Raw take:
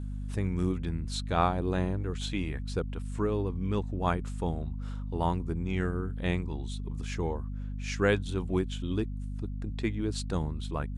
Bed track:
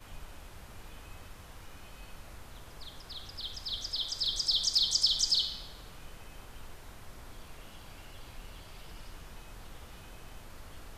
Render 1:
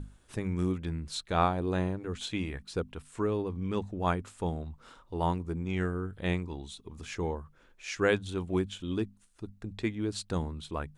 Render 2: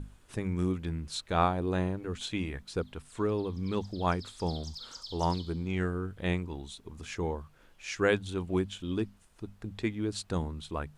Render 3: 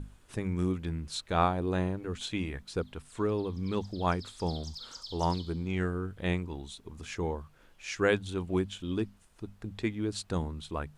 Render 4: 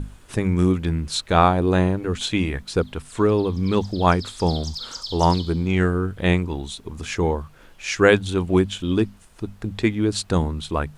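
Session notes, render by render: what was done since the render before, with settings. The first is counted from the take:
hum notches 50/100/150/200/250 Hz
add bed track -18 dB
no audible change
trim +11.5 dB; peak limiter -3 dBFS, peak gain reduction 2 dB

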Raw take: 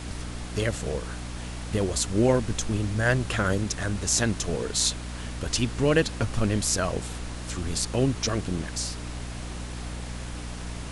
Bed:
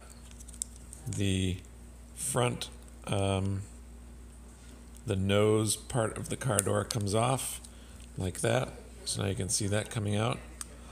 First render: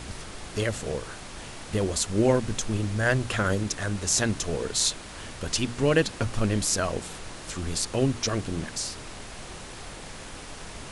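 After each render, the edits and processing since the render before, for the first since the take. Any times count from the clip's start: hum notches 60/120/180/240/300 Hz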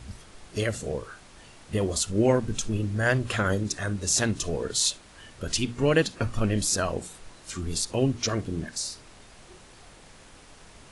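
noise print and reduce 10 dB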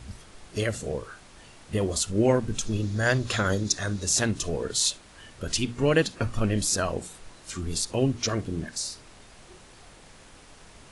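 2.67–4.04 s: time-frequency box 3.3–7.3 kHz +7 dB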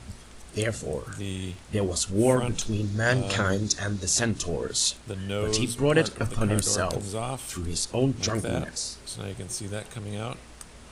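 add bed -3.5 dB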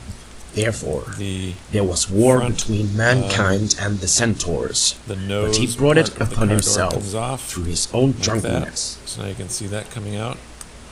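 trim +7.5 dB; peak limiter -1 dBFS, peak gain reduction 2.5 dB

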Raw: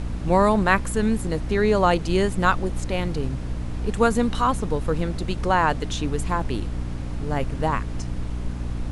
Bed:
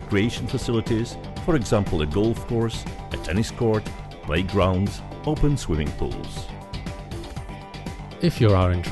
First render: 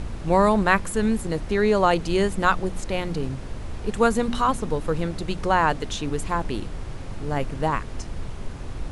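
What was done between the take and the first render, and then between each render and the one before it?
de-hum 60 Hz, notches 5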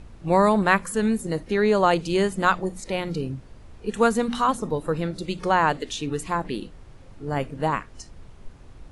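noise print and reduce 13 dB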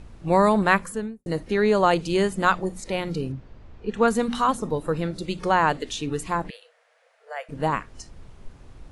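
0.76–1.26 s: studio fade out; 3.32–4.08 s: distance through air 140 m; 6.50–7.49 s: rippled Chebyshev high-pass 460 Hz, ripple 9 dB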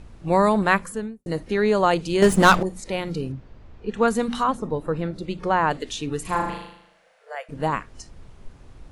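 2.22–2.63 s: waveshaping leveller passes 3; 4.43–5.71 s: treble shelf 3.9 kHz -11.5 dB; 6.21–7.35 s: flutter echo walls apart 6.6 m, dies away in 0.75 s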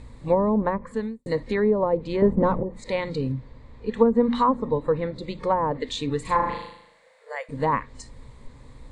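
low-pass that closes with the level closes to 530 Hz, closed at -15 dBFS; rippled EQ curve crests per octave 1, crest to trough 10 dB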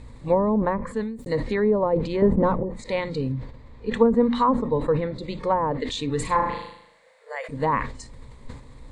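decay stretcher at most 84 dB/s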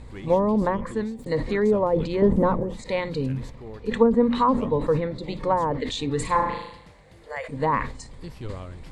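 add bed -19 dB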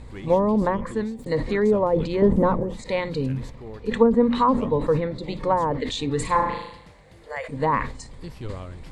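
trim +1 dB

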